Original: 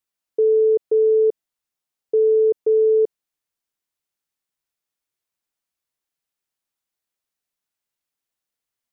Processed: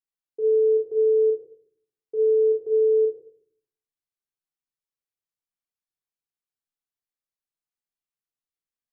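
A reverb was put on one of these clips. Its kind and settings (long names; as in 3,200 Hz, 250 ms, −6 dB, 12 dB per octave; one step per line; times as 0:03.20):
rectangular room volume 790 cubic metres, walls furnished, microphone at 3.6 metres
level −16.5 dB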